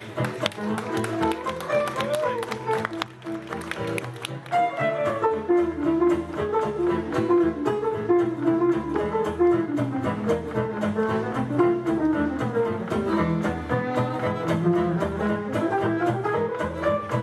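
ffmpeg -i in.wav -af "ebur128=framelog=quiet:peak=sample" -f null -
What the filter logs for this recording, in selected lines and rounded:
Integrated loudness:
  I:         -24.8 LUFS
  Threshold: -34.8 LUFS
Loudness range:
  LRA:         3.9 LU
  Threshold: -44.7 LUFS
  LRA low:   -27.2 LUFS
  LRA high:  -23.3 LUFS
Sample peak:
  Peak:       -5.3 dBFS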